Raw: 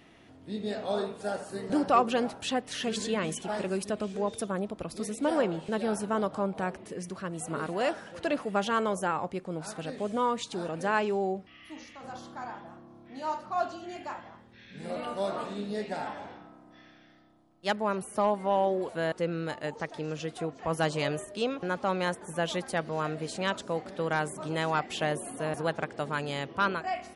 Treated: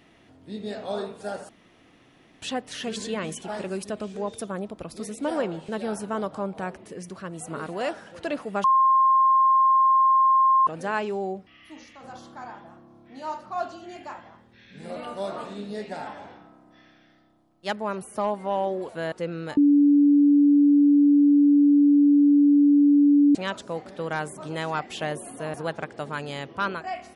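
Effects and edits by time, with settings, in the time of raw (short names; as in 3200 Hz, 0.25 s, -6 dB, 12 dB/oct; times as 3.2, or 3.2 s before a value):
1.49–2.42 room tone
8.64–10.67 bleep 1060 Hz -15 dBFS
19.57–23.35 bleep 288 Hz -13.5 dBFS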